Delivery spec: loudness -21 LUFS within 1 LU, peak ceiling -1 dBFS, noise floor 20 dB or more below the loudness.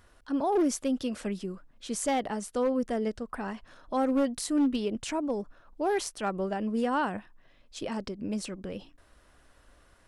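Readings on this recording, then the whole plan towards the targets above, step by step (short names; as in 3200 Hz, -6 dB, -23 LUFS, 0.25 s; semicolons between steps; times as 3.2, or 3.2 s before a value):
clipped 0.7%; flat tops at -20.5 dBFS; loudness -31.0 LUFS; peak -20.5 dBFS; loudness target -21.0 LUFS
-> clip repair -20.5 dBFS; gain +10 dB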